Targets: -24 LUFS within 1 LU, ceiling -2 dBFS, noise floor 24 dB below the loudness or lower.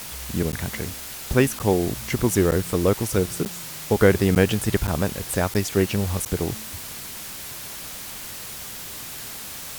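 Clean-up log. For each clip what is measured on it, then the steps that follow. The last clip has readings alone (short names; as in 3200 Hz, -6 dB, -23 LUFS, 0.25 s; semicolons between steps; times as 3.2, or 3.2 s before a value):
dropouts 8; longest dropout 9.3 ms; noise floor -36 dBFS; noise floor target -49 dBFS; loudness -24.5 LUFS; peak -3.5 dBFS; loudness target -24.0 LUFS
-> interpolate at 0.52/1.59/2.51/3.45/4.35/4.87/5.54/6.25, 9.3 ms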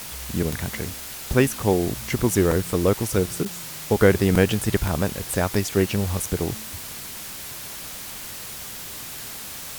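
dropouts 0; noise floor -36 dBFS; noise floor target -49 dBFS
-> denoiser 13 dB, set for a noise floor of -36 dBFS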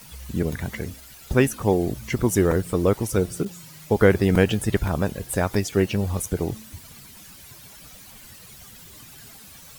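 noise floor -46 dBFS; noise floor target -47 dBFS
-> denoiser 6 dB, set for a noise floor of -46 dBFS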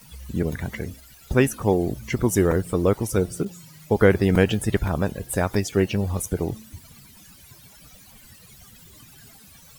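noise floor -49 dBFS; loudness -23.0 LUFS; peak -3.5 dBFS; loudness target -24.0 LUFS
-> gain -1 dB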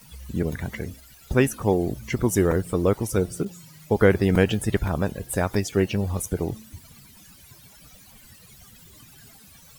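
loudness -24.0 LUFS; peak -4.5 dBFS; noise floor -50 dBFS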